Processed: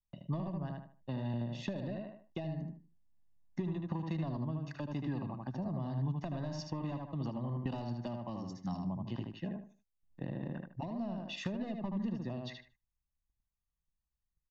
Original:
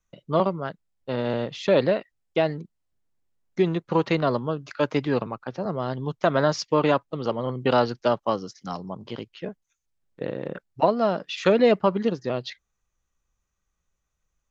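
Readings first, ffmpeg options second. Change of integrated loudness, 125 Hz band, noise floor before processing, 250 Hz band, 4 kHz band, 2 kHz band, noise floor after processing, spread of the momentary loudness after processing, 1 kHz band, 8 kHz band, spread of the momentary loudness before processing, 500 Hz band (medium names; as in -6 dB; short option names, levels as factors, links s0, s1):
-14.5 dB, -5.5 dB, -79 dBFS, -10.0 dB, -16.0 dB, -19.0 dB, under -85 dBFS, 6 LU, -19.0 dB, no reading, 14 LU, -22.0 dB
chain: -filter_complex "[0:a]asoftclip=type=tanh:threshold=0.237,tiltshelf=f=790:g=5,asplit=2[s0][s1];[s1]adelay=76,lowpass=f=3200:p=1,volume=0.596,asplit=2[s2][s3];[s3]adelay=76,lowpass=f=3200:p=1,volume=0.26,asplit=2[s4][s5];[s5]adelay=76,lowpass=f=3200:p=1,volume=0.26,asplit=2[s6][s7];[s7]adelay=76,lowpass=f=3200:p=1,volume=0.26[s8];[s2][s4][s6][s8]amix=inputs=4:normalize=0[s9];[s0][s9]amix=inputs=2:normalize=0,acompressor=threshold=0.0501:ratio=6,aecho=1:1:1.1:0.79,agate=range=0.2:threshold=0.00112:ratio=16:detection=peak,acrossover=split=410|3000[s10][s11][s12];[s11]acompressor=threshold=0.0126:ratio=6[s13];[s10][s13][s12]amix=inputs=3:normalize=0,volume=0.422"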